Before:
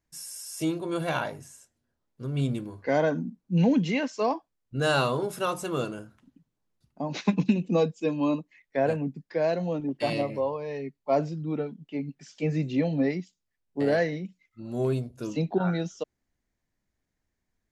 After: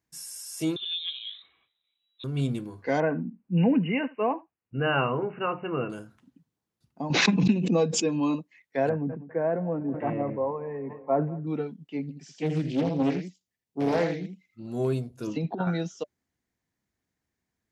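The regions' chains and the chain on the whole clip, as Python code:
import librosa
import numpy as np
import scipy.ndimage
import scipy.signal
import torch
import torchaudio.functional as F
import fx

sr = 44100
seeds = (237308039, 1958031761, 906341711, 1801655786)

y = fx.chain(x, sr, fx.env_lowpass_down(base_hz=390.0, full_db=-24.0),
    fx.peak_eq(hz=150.0, db=-10.5, octaves=1.1),
    fx.freq_invert(carrier_hz=3900), at=(0.76, 2.24))
y = fx.chain(y, sr, fx.brickwall_lowpass(high_hz=3000.0),
    fx.echo_single(ms=75, db=-21.5), at=(3.0, 5.9))
y = fx.chain(y, sr, fx.lowpass(hz=10000.0, slope=24),
    fx.high_shelf(hz=5000.0, db=-9.0),
    fx.pre_swell(db_per_s=35.0), at=(7.1, 8.23))
y = fx.chain(y, sr, fx.cheby2_lowpass(hz=4300.0, order=4, stop_db=50),
    fx.echo_feedback(ms=201, feedback_pct=57, wet_db=-20.5),
    fx.sustainer(db_per_s=85.0), at=(8.89, 11.47))
y = fx.chain(y, sr, fx.peak_eq(hz=1400.0, db=-6.0, octaves=1.1),
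    fx.echo_single(ms=81, db=-7.0),
    fx.doppler_dist(depth_ms=0.55), at=(12.02, 14.67))
y = fx.chain(y, sr, fx.lowpass(hz=4400.0, slope=12),
    fx.over_compress(threshold_db=-27.0, ratio=-0.5), at=(15.27, 15.67))
y = scipy.signal.sosfilt(scipy.signal.butter(2, 79.0, 'highpass', fs=sr, output='sos'), y)
y = fx.notch(y, sr, hz=590.0, q=12.0)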